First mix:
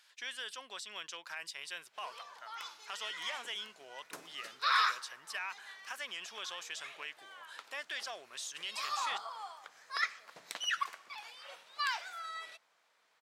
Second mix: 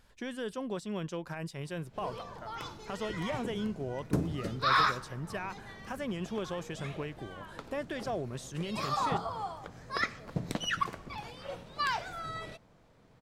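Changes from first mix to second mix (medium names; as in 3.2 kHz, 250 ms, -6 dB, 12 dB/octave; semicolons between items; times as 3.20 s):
speech: add peaking EQ 3.9 kHz -7 dB 2.3 oct; master: remove high-pass 1.3 kHz 12 dB/octave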